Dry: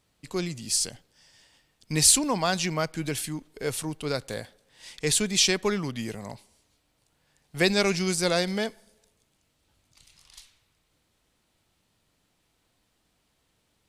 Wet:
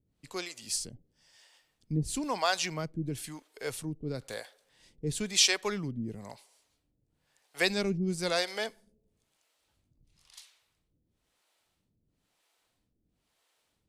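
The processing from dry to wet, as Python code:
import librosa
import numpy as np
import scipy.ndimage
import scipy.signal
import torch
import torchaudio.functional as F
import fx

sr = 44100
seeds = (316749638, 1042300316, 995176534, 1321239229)

y = fx.harmonic_tremolo(x, sr, hz=1.0, depth_pct=100, crossover_hz=420.0)
y = F.gain(torch.from_numpy(y), -1.0).numpy()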